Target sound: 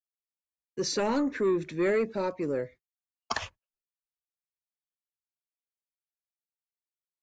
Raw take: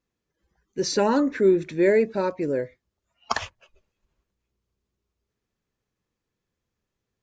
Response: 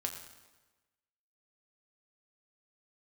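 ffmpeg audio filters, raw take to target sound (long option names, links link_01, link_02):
-filter_complex "[0:a]agate=range=-40dB:threshold=-44dB:ratio=16:detection=peak,acrossover=split=150|1700[link_01][link_02][link_03];[link_02]asoftclip=type=tanh:threshold=-18.5dB[link_04];[link_01][link_04][link_03]amix=inputs=3:normalize=0,volume=-3.5dB"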